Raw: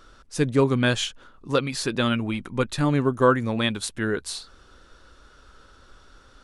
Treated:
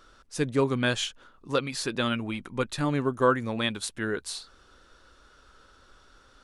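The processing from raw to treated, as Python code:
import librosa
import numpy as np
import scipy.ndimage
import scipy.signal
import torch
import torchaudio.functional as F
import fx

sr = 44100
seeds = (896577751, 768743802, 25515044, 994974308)

y = fx.low_shelf(x, sr, hz=260.0, db=-4.5)
y = y * librosa.db_to_amplitude(-3.0)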